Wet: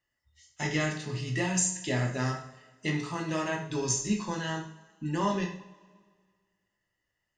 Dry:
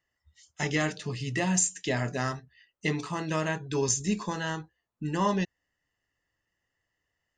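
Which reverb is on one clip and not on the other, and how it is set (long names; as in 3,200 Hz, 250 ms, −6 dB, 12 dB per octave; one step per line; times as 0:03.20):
coupled-rooms reverb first 0.48 s, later 1.8 s, from −19 dB, DRR 0.5 dB
level −4 dB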